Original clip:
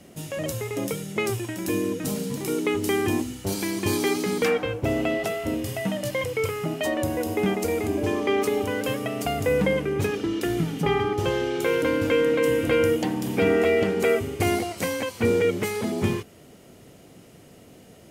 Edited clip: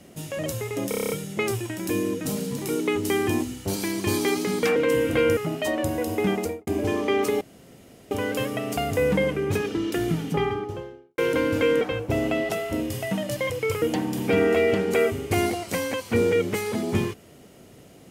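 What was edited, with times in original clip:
0:00.89: stutter 0.03 s, 8 plays
0:04.55–0:06.56: swap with 0:12.30–0:12.91
0:07.57–0:07.86: fade out and dull
0:08.60: splice in room tone 0.70 s
0:10.66–0:11.67: fade out and dull

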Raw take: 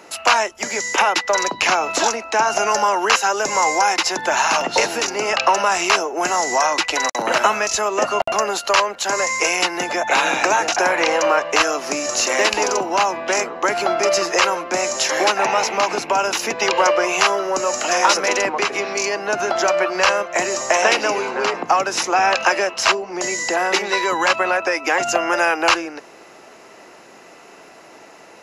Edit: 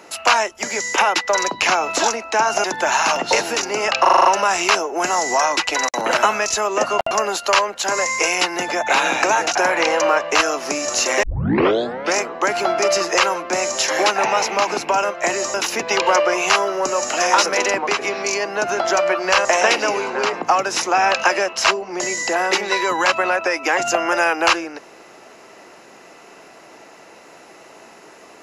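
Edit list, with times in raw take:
0:02.64–0:04.09: remove
0:05.46: stutter 0.04 s, 7 plays
0:12.44: tape start 0.94 s
0:20.16–0:20.66: move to 0:16.25

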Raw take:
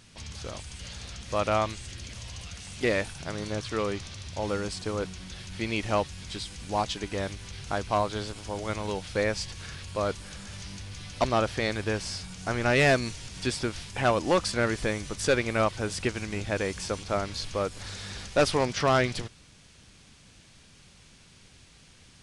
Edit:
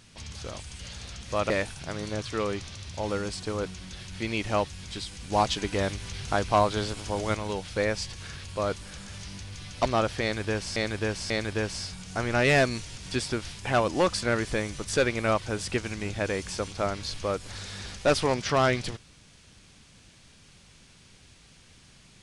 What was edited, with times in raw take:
0:01.50–0:02.89: remove
0:06.71–0:08.74: clip gain +4 dB
0:11.61–0:12.15: repeat, 3 plays

